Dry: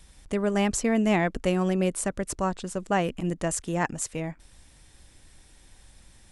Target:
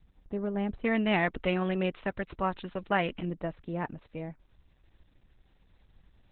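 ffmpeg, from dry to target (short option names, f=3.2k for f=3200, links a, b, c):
-af "asuperstop=centerf=5400:order=4:qfactor=1.5,asetnsamples=n=441:p=0,asendcmd='0.84 equalizer g 7.5;3.25 equalizer g -5',equalizer=f=3.1k:w=0.33:g=-9.5,volume=-5dB" -ar 48000 -c:a libopus -b:a 8k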